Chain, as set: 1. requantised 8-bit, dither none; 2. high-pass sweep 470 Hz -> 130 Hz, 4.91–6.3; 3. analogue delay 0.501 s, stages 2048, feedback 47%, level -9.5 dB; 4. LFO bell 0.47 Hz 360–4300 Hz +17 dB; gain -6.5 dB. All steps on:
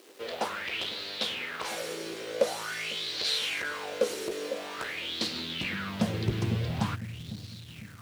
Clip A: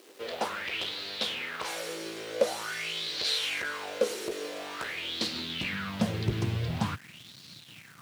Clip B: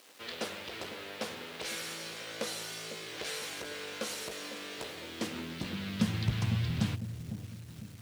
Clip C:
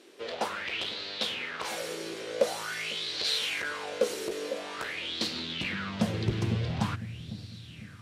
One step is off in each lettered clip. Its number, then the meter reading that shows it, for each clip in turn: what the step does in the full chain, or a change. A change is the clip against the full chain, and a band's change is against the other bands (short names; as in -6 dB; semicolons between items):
3, momentary loudness spread change +2 LU; 4, 125 Hz band +6.5 dB; 1, distortion -26 dB